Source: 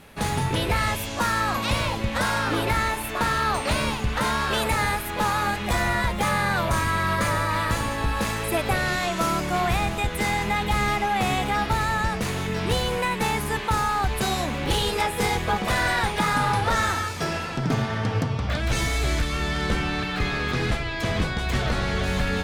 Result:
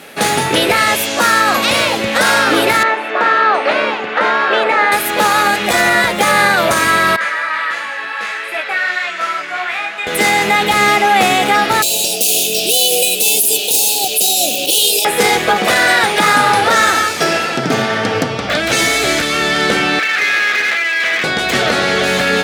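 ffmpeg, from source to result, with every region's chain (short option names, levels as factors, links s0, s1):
-filter_complex "[0:a]asettb=1/sr,asplit=3[s0][s1][s2];[s0]atrim=end=2.834[s3];[s1]atrim=start=2.83:end=4.92,asetpts=PTS-STARTPTS,afade=t=in:d=0.004:c=qsin,afade=t=out:st=2.086:d=0.004:c=qsin,highpass=330,lowpass=2200,asoftclip=type=hard:threshold=0.178[s4];[s2]atrim=start=4.916[s5];[s3][s4]acrossfade=d=0.004:c1=hsin:c2=qsin[s6];[s6][s5]acrossfade=d=0.004:c1=qsin:c2=hsin,asettb=1/sr,asplit=3[s7][s8][s9];[s7]atrim=end=7.164[s10];[s8]atrim=start=7.16:end=10.07,asetpts=PTS-STARTPTS,afade=t=in:d=0.004:c=qsin,afade=t=out:st=2.906:d=0.004:c=qsin,flanger=delay=19:depth=2.1:speed=2.8,bandpass=f=1800:t=q:w=1.4[s11];[s9]atrim=start=10.066[s12];[s10][s11]acrossfade=d=0.004:c1=hsin:c2=qsin[s13];[s13][s12]acrossfade=d=0.004:c1=qsin:c2=hsin,asettb=1/sr,asplit=3[s14][s15][s16];[s14]atrim=end=11.824[s17];[s15]atrim=start=11.82:end=15.05,asetpts=PTS-STARTPTS,afade=t=in:d=0.004:c=qsin,afade=t=out:st=3.226:d=0.004:c=qsin,asuperstop=centerf=1400:order=20:qfactor=0.81,aemphasis=mode=production:type=riaa,aeval=exprs='sgn(val(0))*max(abs(val(0))-0.00422,0)':c=same[s18];[s16]atrim=start=15.046[s19];[s17][s18]acrossfade=d=0.004:c1=hsin:c2=qsin[s20];[s20][s19]acrossfade=d=0.004:c1=qsin:c2=hsin,asettb=1/sr,asplit=3[s21][s22][s23];[s21]atrim=end=19.994[s24];[s22]atrim=start=19.99:end=21.24,asetpts=PTS-STARTPTS,afade=t=in:d=0.004:c=qsin,afade=t=out:st=1.246:d=0.004:c=qsin,acontrast=53,bandpass=f=2000:t=q:w=2.3,aeval=exprs='clip(val(0),-1,0.0376)':c=same[s25];[s23]atrim=start=21.236[s26];[s24][s25]acrossfade=d=0.004:c1=hsin:c2=qsin[s27];[s27][s26]acrossfade=d=0.004:c1=qsin:c2=hsin,highpass=310,equalizer=f=1000:w=4.4:g=-8.5,alimiter=level_in=6.31:limit=0.891:release=50:level=0:latency=1,volume=0.891"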